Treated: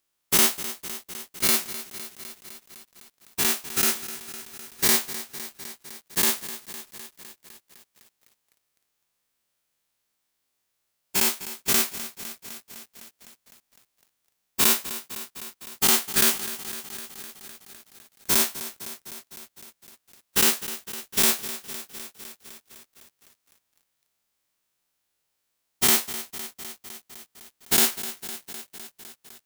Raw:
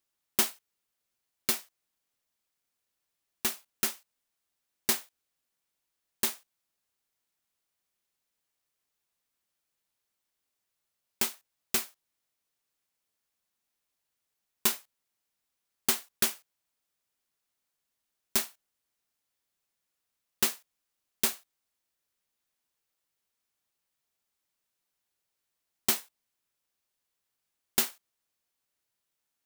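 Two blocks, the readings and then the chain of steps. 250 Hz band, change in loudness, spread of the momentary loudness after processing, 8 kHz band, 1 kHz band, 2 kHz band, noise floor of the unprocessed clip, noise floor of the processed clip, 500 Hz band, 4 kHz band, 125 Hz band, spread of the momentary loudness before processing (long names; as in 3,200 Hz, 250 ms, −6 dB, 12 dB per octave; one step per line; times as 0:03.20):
+9.5 dB, +7.0 dB, 21 LU, +9.5 dB, +9.5 dB, +10.0 dB, −84 dBFS, −77 dBFS, +9.5 dB, +9.5 dB, +10.5 dB, 8 LU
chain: every bin's largest magnitude spread in time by 120 ms
feedback echo at a low word length 254 ms, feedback 80%, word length 7 bits, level −13.5 dB
level +1.5 dB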